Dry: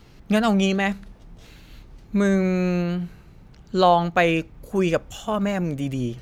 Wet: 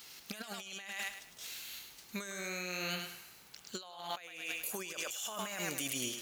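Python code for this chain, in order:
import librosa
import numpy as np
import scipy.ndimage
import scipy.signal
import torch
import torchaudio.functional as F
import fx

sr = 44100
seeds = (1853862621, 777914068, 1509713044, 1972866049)

p1 = np.diff(x, prepend=0.0)
p2 = p1 + fx.echo_thinned(p1, sr, ms=105, feedback_pct=32, hz=400.0, wet_db=-6, dry=0)
p3 = fx.over_compress(p2, sr, threshold_db=-48.0, ratio=-1.0)
y = p3 * librosa.db_to_amplitude(5.5)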